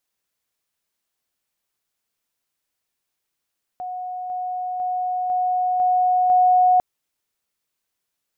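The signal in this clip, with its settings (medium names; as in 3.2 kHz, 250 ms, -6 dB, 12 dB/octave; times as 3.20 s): level ladder 731 Hz -27 dBFS, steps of 3 dB, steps 6, 0.50 s 0.00 s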